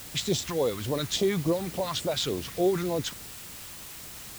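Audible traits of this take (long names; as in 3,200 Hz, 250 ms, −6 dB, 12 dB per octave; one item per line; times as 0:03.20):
phaser sweep stages 2, 3.5 Hz, lowest notch 480–1,600 Hz
a quantiser's noise floor 8 bits, dither triangular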